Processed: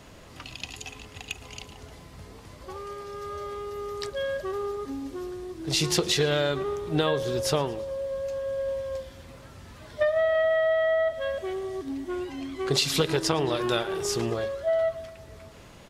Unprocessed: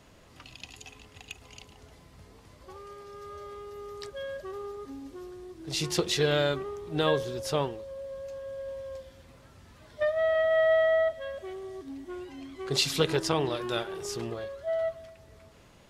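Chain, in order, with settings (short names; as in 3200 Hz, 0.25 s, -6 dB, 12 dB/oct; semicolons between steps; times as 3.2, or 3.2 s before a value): compressor 6:1, threshold -28 dBFS, peak gain reduction 9 dB; on a send: feedback echo 0.114 s, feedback 59%, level -22 dB; on the sum: gain +7.5 dB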